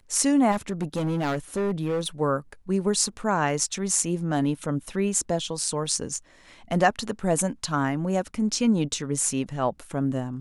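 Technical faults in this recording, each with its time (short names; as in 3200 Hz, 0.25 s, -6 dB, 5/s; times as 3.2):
0.51–2.08 clipped -22 dBFS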